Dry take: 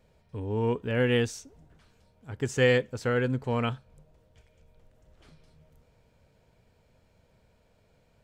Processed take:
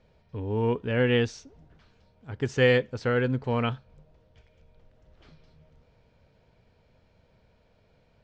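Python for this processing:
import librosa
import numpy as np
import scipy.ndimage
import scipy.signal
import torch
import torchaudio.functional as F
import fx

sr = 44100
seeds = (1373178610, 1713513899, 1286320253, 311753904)

y = scipy.signal.sosfilt(scipy.signal.butter(4, 5500.0, 'lowpass', fs=sr, output='sos'), x)
y = y * librosa.db_to_amplitude(1.5)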